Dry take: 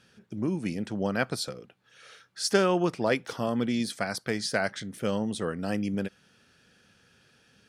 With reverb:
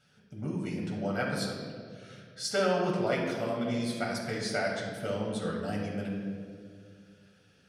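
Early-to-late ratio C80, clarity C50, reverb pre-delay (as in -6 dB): 4.0 dB, 2.0 dB, 7 ms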